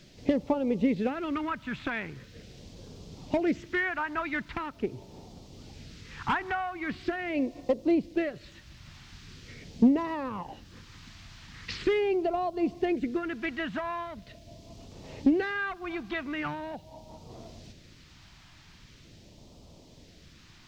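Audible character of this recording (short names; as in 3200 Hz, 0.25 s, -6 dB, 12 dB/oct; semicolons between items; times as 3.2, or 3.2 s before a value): phasing stages 2, 0.42 Hz, lowest notch 470–1600 Hz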